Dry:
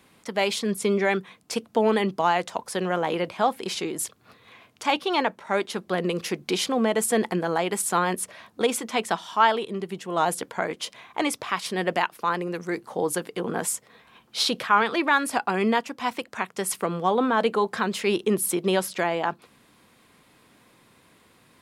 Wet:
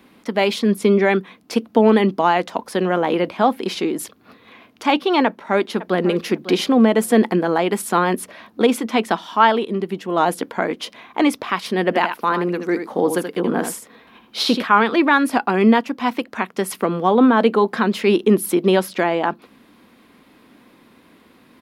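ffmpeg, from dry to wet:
-filter_complex "[0:a]asplit=2[a][b];[b]afade=t=in:st=5.25:d=0.01,afade=t=out:st=6.05:d=0.01,aecho=0:1:550|1100:0.199526|0.0299289[c];[a][c]amix=inputs=2:normalize=0,asettb=1/sr,asplit=3[d][e][f];[d]atrim=end=11.834[g];[e]atrim=start=11.83:end=14.64,asetpts=PTS-STARTPTS,afade=t=in:d=0.004:c=qsin,afade=t=out:st=2.806:d=0.004:c=qsin,aecho=1:1:79:0.398,atrim=end_sample=123921[h];[f]atrim=start=14.636[i];[g][h]acrossfade=d=0.004:c1=hsin:c2=qsin[j];[j][i]acrossfade=d=0.004:c1=qsin:c2=hsin,equalizer=f=125:t=o:w=1:g=-7,equalizer=f=250:t=o:w=1:g=9,equalizer=f=8k:t=o:w=1:g=-10,volume=5dB"

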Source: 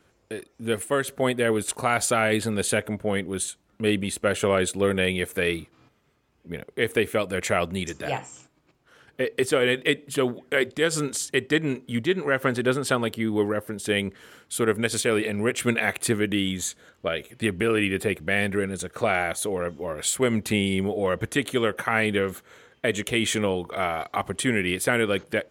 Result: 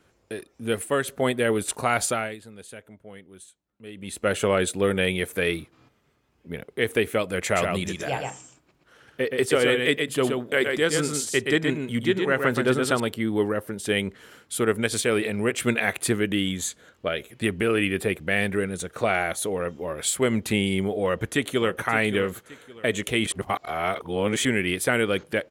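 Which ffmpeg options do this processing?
-filter_complex "[0:a]asettb=1/sr,asplit=3[a][b][c];[a]atrim=end=7.434[d];[b]atrim=start=7.43:end=13,asetpts=PTS-STARTPTS,afade=t=in:d=0.004:c=qsin,afade=t=out:st=5.566:d=0.004:c=qsin,aecho=1:1:123:0.596,atrim=end_sample=245637[e];[c]atrim=start=12.996[f];[d][e]acrossfade=d=0.004:c1=hsin:c2=qsin[g];[g][f]acrossfade=d=0.004:c1=qsin:c2=hsin,asplit=2[h][i];[i]afade=t=in:st=21.04:d=0.01,afade=t=out:st=21.76:d=0.01,aecho=0:1:570|1140|1710:0.266073|0.0798218|0.0239465[j];[h][j]amix=inputs=2:normalize=0,asplit=5[k][l][m][n][o];[k]atrim=end=2.36,asetpts=PTS-STARTPTS,afade=t=out:st=2.02:d=0.34:silence=0.11885[p];[l]atrim=start=2.36:end=3.95,asetpts=PTS-STARTPTS,volume=-18.5dB[q];[m]atrim=start=3.95:end=23.262,asetpts=PTS-STARTPTS,afade=t=in:d=0.34:silence=0.11885[r];[n]atrim=start=23.258:end=24.452,asetpts=PTS-STARTPTS,areverse[s];[o]atrim=start=24.448[t];[p][q][r]concat=n=3:v=0:a=1[u];[u][s]acrossfade=d=0.004:c1=hsin:c2=hsin[v];[v][t]acrossfade=d=0.004:c1=hsin:c2=hsin"

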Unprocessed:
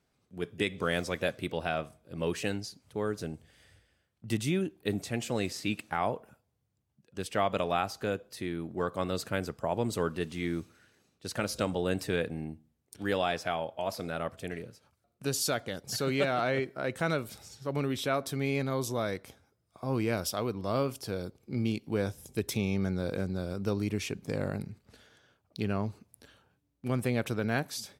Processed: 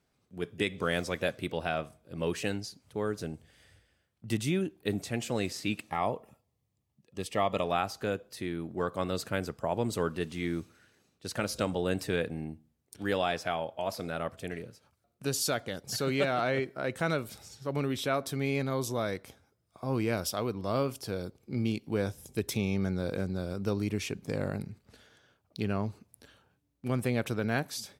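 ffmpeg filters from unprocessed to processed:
-filter_complex "[0:a]asettb=1/sr,asplit=3[a][b][c];[a]atrim=end=5.854[d];[b]atrim=start=5.85:end=7.64,asetpts=PTS-STARTPTS,afade=t=in:d=0.004:c=qsin,afade=t=out:st=1.786:d=0.004:c=qsin,asuperstop=centerf=1500:order=8:qfactor=5.4[e];[c]atrim=start=7.636[f];[d][e]acrossfade=d=0.004:c1=hsin:c2=qsin[g];[g][f]acrossfade=d=0.004:c1=qsin:c2=hsin"

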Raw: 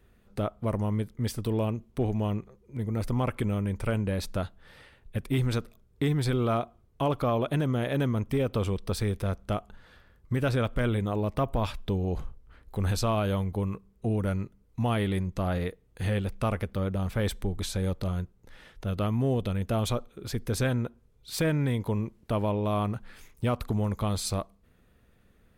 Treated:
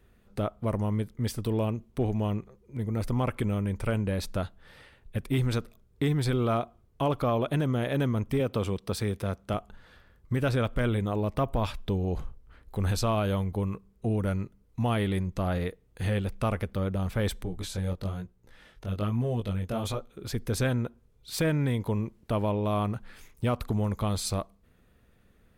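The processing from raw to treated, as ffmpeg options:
-filter_complex "[0:a]asettb=1/sr,asplit=3[a][b][c];[a]atrim=end=8.404[d];[b]atrim=start=8.4:end=9.54,asetpts=PTS-STARTPTS,afade=t=in:d=0.004:c=qsin,afade=t=out:st=1.136:d=0.004:c=qsin,highpass=95[e];[c]atrim=start=9.536[f];[d][e]acrossfade=d=0.004:c1=hsin:c2=qsin[g];[g][f]acrossfade=d=0.004:c1=qsin:c2=hsin,asettb=1/sr,asplit=3[h][i][j];[h]atrim=end=17.434[k];[i]atrim=start=17.43:end=20.1,asetpts=PTS-STARTPTS,afade=t=in:d=0.004:c=qsin,afade=t=out:st=2.666:d=0.004:c=qsin,flanger=delay=16.5:depth=6.1:speed=1.1[l];[j]atrim=start=20.096[m];[k][l]acrossfade=d=0.004:c1=hsin:c2=qsin[n];[n][m]acrossfade=d=0.004:c1=qsin:c2=hsin"

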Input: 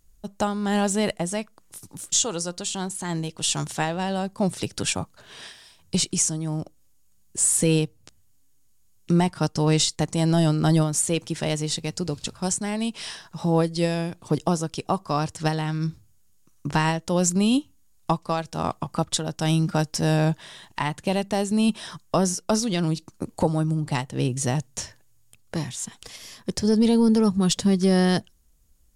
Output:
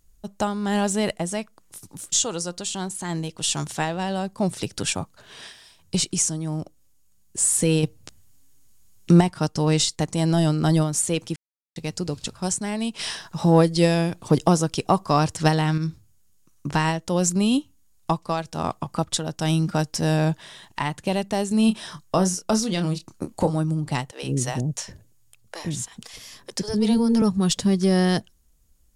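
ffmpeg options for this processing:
-filter_complex "[0:a]asettb=1/sr,asplit=3[a][b][c];[a]atrim=end=7.834[d];[b]atrim=start=7.83:end=9.21,asetpts=PTS-STARTPTS,afade=t=in:d=0.004:c=qsin,afade=t=out:st=1.376:d=0.004:c=qsin,acontrast=65[e];[c]atrim=start=9.206[f];[d][e]acrossfade=d=0.004:c1=hsin:c2=qsin[g];[g][f]acrossfade=d=0.004:c1=qsin:c2=hsin,asettb=1/sr,asplit=3[h][i][j];[h]atrim=end=12.994[k];[i]atrim=start=12.99:end=15.78,asetpts=PTS-STARTPTS,afade=t=in:d=0.004:c=qsin,afade=t=out:st=2.786:d=0.004:c=qsin,acontrast=30[l];[j]atrim=start=15.776[m];[k][l]acrossfade=d=0.004:c1=hsin:c2=qsin[n];[n][m]acrossfade=d=0.004:c1=qsin:c2=hsin,asettb=1/sr,asplit=3[o][p][q];[o]atrim=end=21.484[r];[p]atrim=start=21.48:end=23.56,asetpts=PTS-STARTPTS,afade=t=in:d=0.004:c=qsin,afade=t=out:st=2.076:d=0.004:c=qsin,asplit=2[s][t];[t]adelay=27,volume=-9dB[u];[s][u]amix=inputs=2:normalize=0,atrim=end_sample=91728[v];[q]atrim=start=23.556[w];[r][v]acrossfade=d=0.004:c1=hsin:c2=qsin[x];[x][w]acrossfade=d=0.004:c1=qsin:c2=hsin,asettb=1/sr,asplit=3[y][z][aa];[y]atrim=end=24.114[ab];[z]atrim=start=24.11:end=27.22,asetpts=PTS-STARTPTS,afade=t=in:d=0.004:c=qsin,afade=t=out:st=3.106:d=0.004:c=qsin,acrossover=split=470[ac][ad];[ac]adelay=110[ae];[ae][ad]amix=inputs=2:normalize=0,atrim=end_sample=137151[af];[aa]atrim=start=27.216[ag];[ab][af]acrossfade=d=0.004:c1=hsin:c2=qsin[ah];[ah][ag]acrossfade=d=0.004:c1=qsin:c2=hsin,asplit=3[ai][aj][ak];[ai]atrim=end=11.36,asetpts=PTS-STARTPTS,afade=t=out:st=11.356:d=0.004:c=hsin[al];[aj]atrim=start=11.36:end=11.76,asetpts=PTS-STARTPTS,volume=0[am];[ak]atrim=start=11.76,asetpts=PTS-STARTPTS,afade=t=in:d=0.004:c=hsin[an];[al][am][an]concat=n=3:v=0:a=1"

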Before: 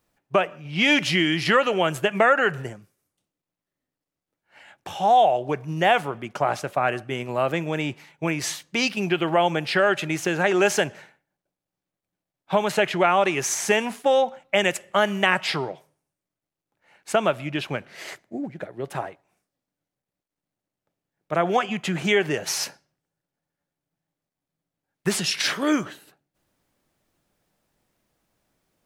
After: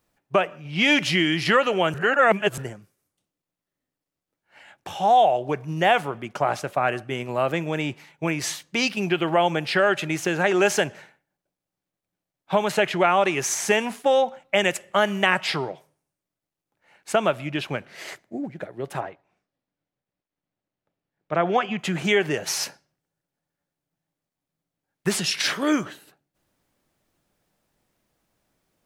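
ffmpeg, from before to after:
-filter_complex "[0:a]asettb=1/sr,asplit=3[a][b][c];[a]atrim=end=19.004[d];[b]atrim=start=19:end=21.79,asetpts=PTS-STARTPTS,afade=t=in:d=0.004:c=qsin,afade=t=out:st=2.786:d=0.004:c=qsin,lowpass=4.1k[e];[c]atrim=start=21.786[f];[d][e]acrossfade=d=0.004:c1=hsin:c2=qsin[g];[g][f]acrossfade=d=0.004:c1=qsin:c2=hsin,asplit=3[h][i][j];[h]atrim=end=1.942[k];[i]atrim=start=1.938:end=2.582,asetpts=PTS-STARTPTS,areverse[l];[j]atrim=start=2.578[m];[k][l]acrossfade=d=0.004:c1=hsin:c2=hsin[n];[n][m]acrossfade=d=0.004:c1=hsin:c2=hsin"

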